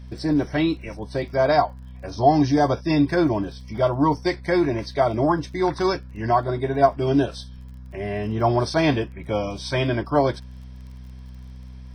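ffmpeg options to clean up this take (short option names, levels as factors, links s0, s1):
-af "adeclick=t=4,bandreject=f=63.4:t=h:w=4,bandreject=f=126.8:t=h:w=4,bandreject=f=190.2:t=h:w=4,bandreject=f=253.6:t=h:w=4"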